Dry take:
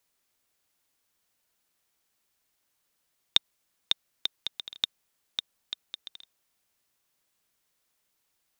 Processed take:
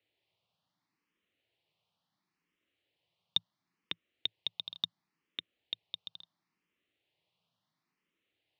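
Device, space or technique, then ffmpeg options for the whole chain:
barber-pole phaser into a guitar amplifier: -filter_complex "[0:a]asplit=2[link_01][link_02];[link_02]afreqshift=0.72[link_03];[link_01][link_03]amix=inputs=2:normalize=1,asoftclip=type=tanh:threshold=-16.5dB,highpass=90,equalizer=frequency=110:width_type=q:width=4:gain=7,equalizer=frequency=170:width_type=q:width=4:gain=9,equalizer=frequency=320:width_type=q:width=4:gain=4,equalizer=frequency=1500:width_type=q:width=4:gain=-8,equalizer=frequency=2900:width_type=q:width=4:gain=3,lowpass=frequency=4000:width=0.5412,lowpass=frequency=4000:width=1.3066,volume=1dB"

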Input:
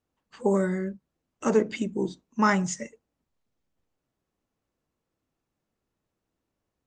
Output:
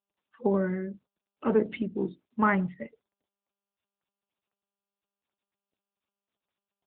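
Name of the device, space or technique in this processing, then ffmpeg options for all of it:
mobile call with aggressive noise cancelling: -af "highpass=100,afftdn=noise_reduction=20:noise_floor=-44,volume=-1.5dB" -ar 8000 -c:a libopencore_amrnb -b:a 10200

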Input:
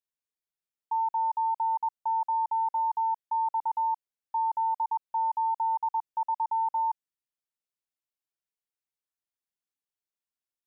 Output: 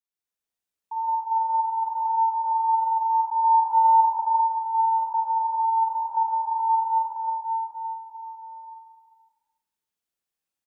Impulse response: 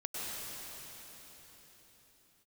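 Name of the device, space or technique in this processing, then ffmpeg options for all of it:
cave: -filter_complex "[0:a]aecho=1:1:299:0.141[link_01];[1:a]atrim=start_sample=2205[link_02];[link_01][link_02]afir=irnorm=-1:irlink=0,asettb=1/sr,asplit=3[link_03][link_04][link_05];[link_03]atrim=end=3.444[link_06];[link_04]atrim=start=3.44:end=4.36,asetpts=PTS-STARTPTS,afade=type=in:duration=0.004:curve=qsin,afade=type=out:start_time=0.916:duration=0.004:curve=qsin,equalizer=frequency=800:width=0.59:gain=5.5[link_07];[link_05]atrim=start=4.356[link_08];[link_06][link_07]acrossfade=duration=0.004:curve1=hsin:curve2=qsin[link_09];[link_09][link_08]acrossfade=duration=0.004:curve1=qsin:curve2=hsin,aecho=1:1:50|107.5|173.6|249.7|337.1:0.631|0.398|0.251|0.158|0.1"

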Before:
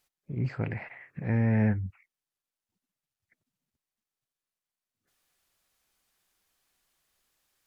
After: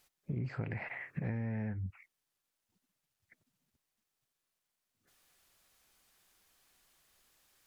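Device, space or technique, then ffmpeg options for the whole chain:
serial compression, leveller first: -af "acompressor=threshold=-28dB:ratio=2.5,acompressor=threshold=-39dB:ratio=10,volume=5dB"

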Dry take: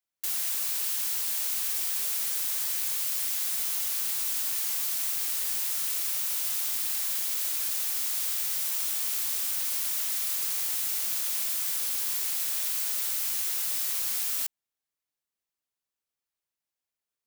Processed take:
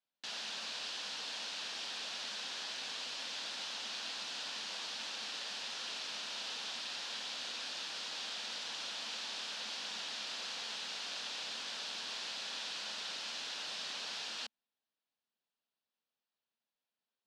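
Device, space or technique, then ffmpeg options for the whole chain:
kitchen radio: -af "highpass=210,equalizer=frequency=220:width_type=q:width=4:gain=6,equalizer=frequency=360:width_type=q:width=4:gain=-6,equalizer=frequency=1200:width_type=q:width=4:gain=-4,equalizer=frequency=2100:width_type=q:width=4:gain=-8,lowpass=frequency=4400:width=0.5412,lowpass=frequency=4400:width=1.3066,volume=2dB"

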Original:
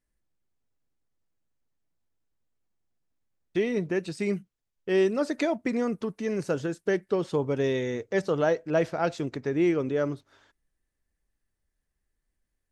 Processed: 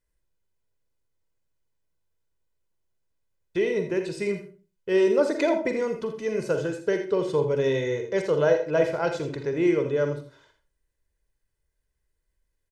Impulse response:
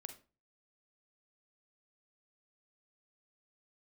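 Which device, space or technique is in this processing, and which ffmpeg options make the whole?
microphone above a desk: -filter_complex "[0:a]asettb=1/sr,asplit=3[link_01][link_02][link_03];[link_01]atrim=end=5.074[link_04];[link_02]atrim=start=5.07:end=5.72,asetpts=PTS-STARTPTS,afade=type=in:duration=0.004:curve=qsin,afade=type=out:start_time=0.646:duration=0.004:curve=qsin,equalizer=frequency=480:width=0.49:gain=4.5[link_05];[link_03]atrim=start=5.716[link_06];[link_04][link_05]acrossfade=duration=0.004:curve1=hsin:curve2=qsin[link_07];[link_07][link_06]acrossfade=duration=0.004:curve1=qsin:curve2=hsin,aecho=1:1:2:0.55,aecho=1:1:82:0.299[link_08];[1:a]atrim=start_sample=2205[link_09];[link_08][link_09]afir=irnorm=-1:irlink=0,volume=5.5dB"

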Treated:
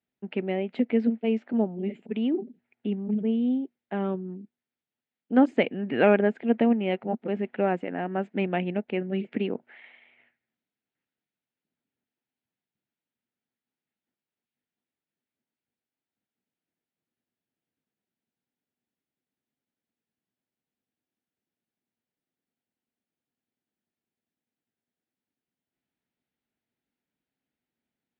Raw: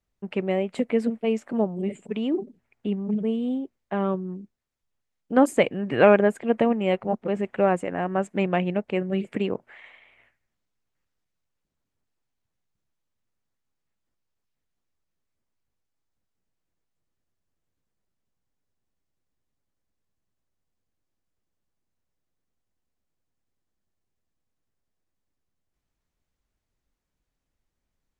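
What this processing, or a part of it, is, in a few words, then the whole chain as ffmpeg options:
kitchen radio: -af "highpass=180,equalizer=frequency=240:width_type=q:width=4:gain=6,equalizer=frequency=560:width_type=q:width=4:gain=-4,equalizer=frequency=1100:width_type=q:width=4:gain=-10,lowpass=frequency=3800:width=0.5412,lowpass=frequency=3800:width=1.3066,volume=-2dB"

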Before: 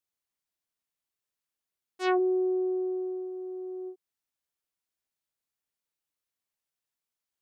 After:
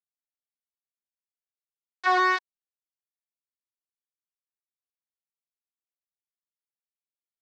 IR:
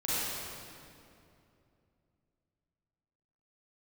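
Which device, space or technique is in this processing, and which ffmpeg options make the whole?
hand-held game console: -af "acrusher=bits=3:mix=0:aa=0.000001,highpass=450,equalizer=frequency=970:width_type=q:width=4:gain=10,equalizer=frequency=1700:width_type=q:width=4:gain=10,equalizer=frequency=2900:width_type=q:width=4:gain=-9,lowpass=frequency=4600:width=0.5412,lowpass=frequency=4600:width=1.3066"

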